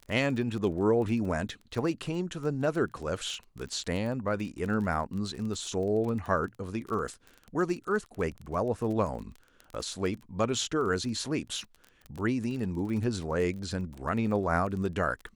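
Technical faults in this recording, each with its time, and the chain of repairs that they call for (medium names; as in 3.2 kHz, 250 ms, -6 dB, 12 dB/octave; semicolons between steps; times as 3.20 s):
crackle 22 per s -35 dBFS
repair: de-click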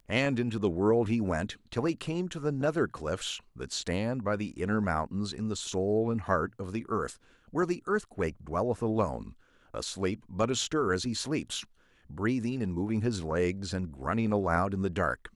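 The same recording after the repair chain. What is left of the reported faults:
nothing left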